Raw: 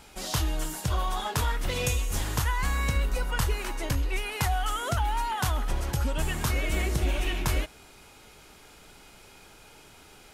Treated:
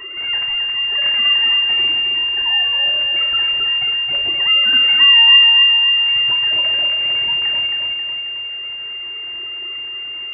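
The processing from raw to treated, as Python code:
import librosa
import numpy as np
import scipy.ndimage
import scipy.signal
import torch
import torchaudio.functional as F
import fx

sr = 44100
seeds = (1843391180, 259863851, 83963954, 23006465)

y = fx.sine_speech(x, sr)
y = scipy.signal.sosfilt(scipy.signal.butter(2, 550.0, 'highpass', fs=sr, output='sos'), y)
y = fx.peak_eq(y, sr, hz=790.0, db=11.5, octaves=0.36)
y = y + 0.48 * np.pad(y, (int(3.3 * sr / 1000.0), 0))[:len(y)]
y = np.maximum(y, 0.0)
y = fx.echo_feedback(y, sr, ms=269, feedback_pct=40, wet_db=-6.0)
y = fx.room_shoebox(y, sr, seeds[0], volume_m3=60.0, walls='mixed', distance_m=0.43)
y = fx.freq_invert(y, sr, carrier_hz=2800)
y = fx.env_flatten(y, sr, amount_pct=50)
y = F.gain(torch.from_numpy(y), -12.5).numpy()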